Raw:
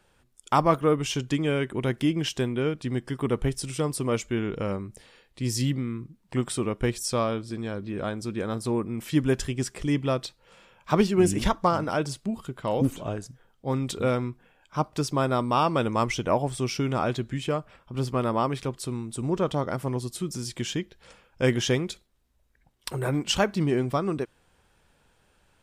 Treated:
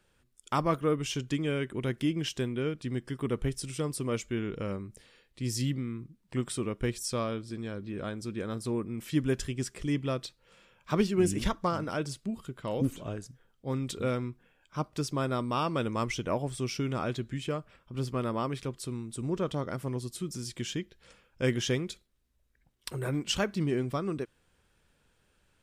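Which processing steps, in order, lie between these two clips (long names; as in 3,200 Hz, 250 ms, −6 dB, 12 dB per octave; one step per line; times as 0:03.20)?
parametric band 810 Hz −6 dB 0.81 octaves
level −4.5 dB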